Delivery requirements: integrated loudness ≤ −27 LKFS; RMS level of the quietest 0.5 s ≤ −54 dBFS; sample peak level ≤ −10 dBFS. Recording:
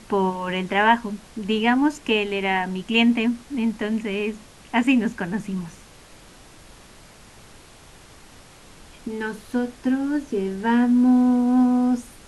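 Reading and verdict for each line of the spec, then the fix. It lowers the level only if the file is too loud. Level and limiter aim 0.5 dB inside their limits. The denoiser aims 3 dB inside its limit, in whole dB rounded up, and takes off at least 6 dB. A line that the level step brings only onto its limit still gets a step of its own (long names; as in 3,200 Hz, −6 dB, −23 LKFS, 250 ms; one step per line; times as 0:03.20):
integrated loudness −22.0 LKFS: out of spec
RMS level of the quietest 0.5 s −47 dBFS: out of spec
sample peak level −4.5 dBFS: out of spec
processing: broadband denoise 6 dB, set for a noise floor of −47 dBFS
level −5.5 dB
brickwall limiter −10.5 dBFS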